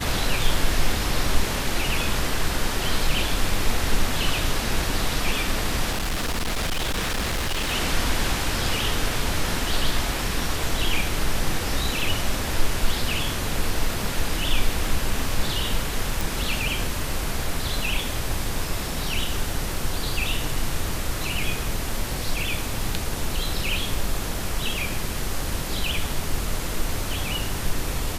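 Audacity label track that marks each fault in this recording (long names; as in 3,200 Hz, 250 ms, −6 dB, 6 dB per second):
5.910000	7.730000	clipping −21.5 dBFS
16.210000	16.210000	click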